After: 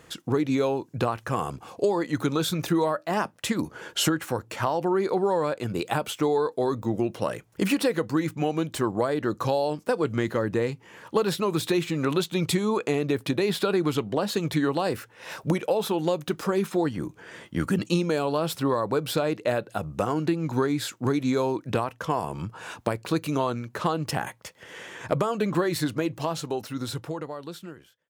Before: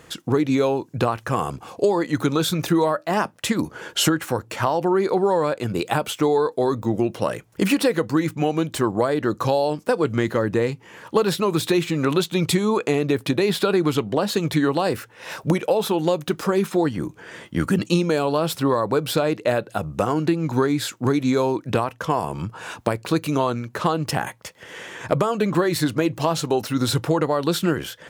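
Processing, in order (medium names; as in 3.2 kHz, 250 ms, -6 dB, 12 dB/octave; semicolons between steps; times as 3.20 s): fade out at the end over 2.47 s; trim -4.5 dB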